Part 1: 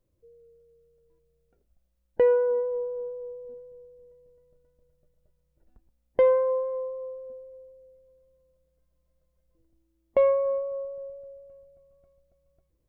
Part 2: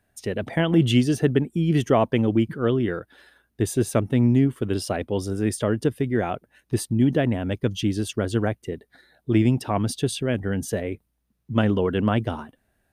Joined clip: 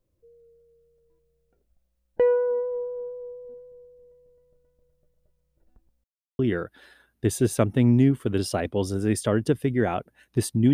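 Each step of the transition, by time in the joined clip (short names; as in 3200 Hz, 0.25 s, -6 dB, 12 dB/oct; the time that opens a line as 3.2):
part 1
6.04–6.39 mute
6.39 switch to part 2 from 2.75 s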